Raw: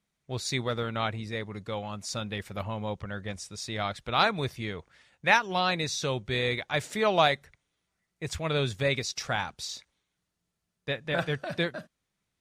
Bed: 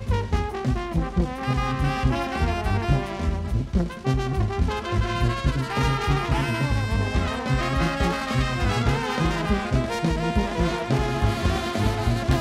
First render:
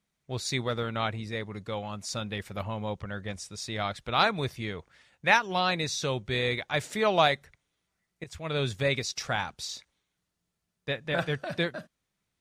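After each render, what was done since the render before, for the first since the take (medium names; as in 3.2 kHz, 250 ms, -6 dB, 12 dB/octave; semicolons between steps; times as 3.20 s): 8.24–8.67 s: fade in, from -15 dB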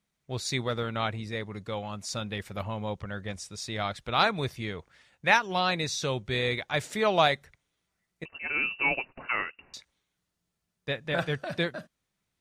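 8.25–9.74 s: frequency inversion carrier 2.8 kHz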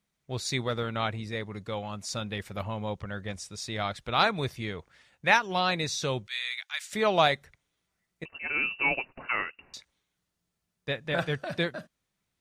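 6.27–6.93 s: Bessel high-pass 2 kHz, order 4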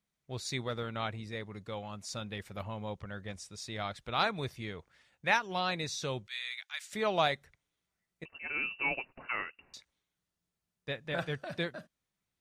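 trim -6 dB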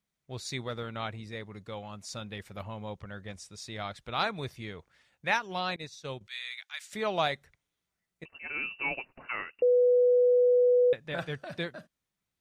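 5.76–6.21 s: expander -32 dBFS; 9.62–10.93 s: bleep 493 Hz -19 dBFS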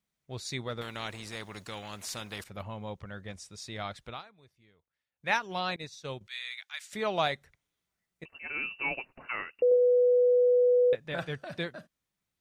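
0.81–2.44 s: spectrum-flattening compressor 2:1; 4.05–5.32 s: dip -23.5 dB, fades 0.17 s; 9.69–10.95 s: flutter echo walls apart 4.1 m, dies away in 0.28 s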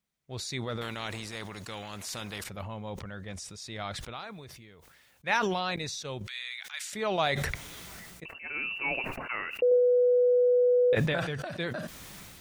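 decay stretcher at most 26 dB/s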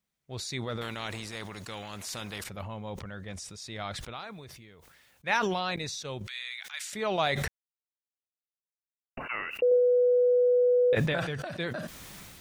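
7.48–9.17 s: mute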